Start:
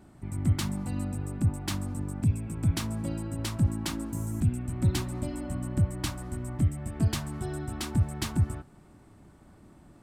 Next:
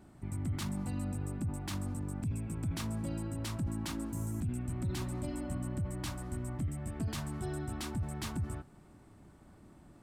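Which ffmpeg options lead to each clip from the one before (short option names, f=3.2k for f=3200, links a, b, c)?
-af "alimiter=level_in=1.5dB:limit=-24dB:level=0:latency=1:release=11,volume=-1.5dB,volume=-3dB"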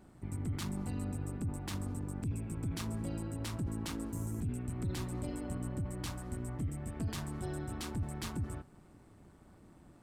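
-af "tremolo=f=180:d=0.519,volume=1dB"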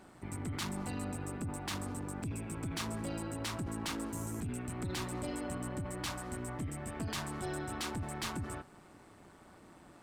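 -filter_complex "[0:a]asplit=2[a][b];[b]highpass=f=720:p=1,volume=14dB,asoftclip=type=tanh:threshold=-27dB[c];[a][c]amix=inputs=2:normalize=0,lowpass=f=6.8k:p=1,volume=-6dB"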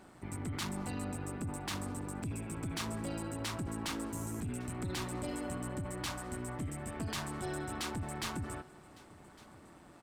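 -af "aecho=1:1:1157:0.0794"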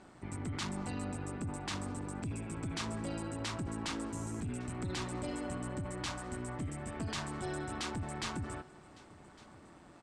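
-af "lowpass=f=8.6k:w=0.5412,lowpass=f=8.6k:w=1.3066"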